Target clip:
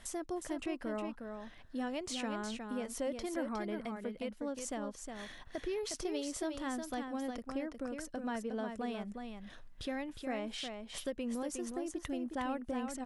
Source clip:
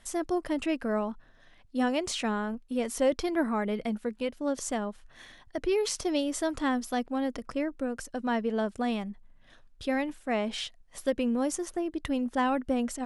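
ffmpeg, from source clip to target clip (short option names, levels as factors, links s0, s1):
-af "acompressor=threshold=0.00316:ratio=2,aecho=1:1:361:0.501,volume=1.41"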